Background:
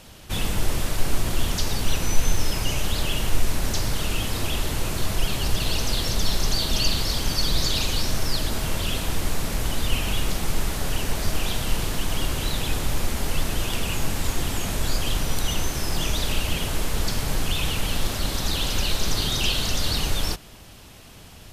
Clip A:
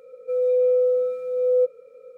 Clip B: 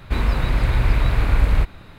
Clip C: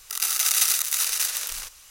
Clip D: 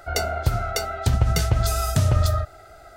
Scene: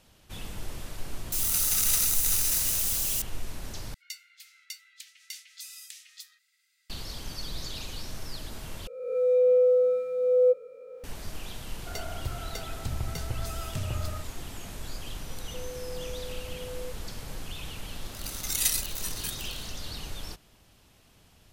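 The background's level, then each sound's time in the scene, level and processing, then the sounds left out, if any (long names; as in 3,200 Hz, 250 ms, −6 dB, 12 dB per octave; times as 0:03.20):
background −14 dB
0:01.32: mix in C −9 dB + spike at every zero crossing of −15.5 dBFS
0:03.94: overwrite with D −12.5 dB + Butterworth high-pass 2,000 Hz 48 dB per octave
0:08.87: overwrite with A −1.5 dB + peak hold with a rise ahead of every peak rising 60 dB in 0.93 s
0:11.79: mix in D −14 dB
0:15.26: mix in A −12 dB + downward compressor 3 to 1, threshold −30 dBFS
0:18.04: mix in C −2.5 dB + noise reduction from a noise print of the clip's start 13 dB
not used: B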